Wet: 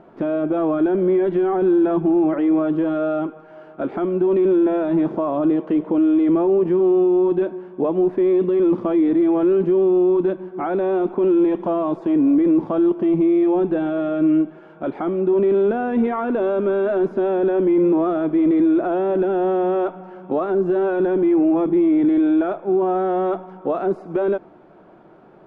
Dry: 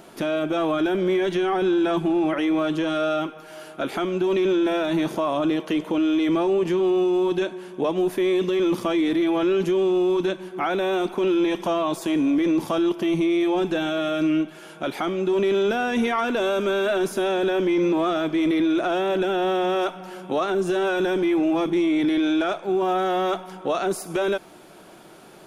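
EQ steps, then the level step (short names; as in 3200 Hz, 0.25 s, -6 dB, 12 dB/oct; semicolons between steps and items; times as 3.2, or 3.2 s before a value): dynamic EQ 300 Hz, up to +5 dB, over -35 dBFS, Q 0.73; LPF 1200 Hz 12 dB/oct; 0.0 dB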